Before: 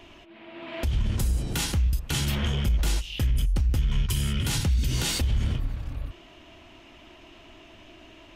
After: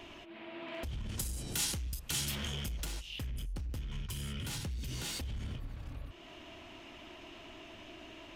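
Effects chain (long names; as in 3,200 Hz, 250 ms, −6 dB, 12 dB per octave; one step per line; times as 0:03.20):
low-shelf EQ 97 Hz −6 dB
downward compressor 2 to 1, threshold −45 dBFS, peak gain reduction 11.5 dB
gain into a clipping stage and back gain 34.5 dB
0:01.09–0:02.85: parametric band 10,000 Hz +10.5 dB 2.7 octaves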